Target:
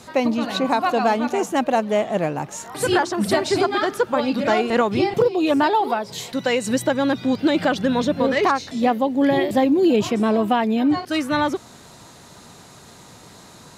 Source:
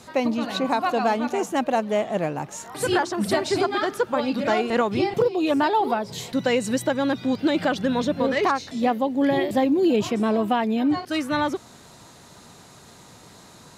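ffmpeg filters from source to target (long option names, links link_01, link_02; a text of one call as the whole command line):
ffmpeg -i in.wav -filter_complex "[0:a]asettb=1/sr,asplit=3[link_01][link_02][link_03];[link_01]atrim=end=5.754[link_04];[link_02]atrim=start=5.75:end=6.67,asetpts=PTS-STARTPTS,afade=type=in:duration=0.004:curve=qsin,afade=type=out:start_time=0.916:duration=0.004:curve=qsin,lowshelf=frequency=340:gain=-7[link_05];[link_03]atrim=start=6.666[link_06];[link_04][link_05]acrossfade=duration=0.004:curve1=hsin:curve2=qsin[link_07];[link_07][link_06]acrossfade=duration=0.004:curve1=qsin:curve2=hsin,volume=3dB" out.wav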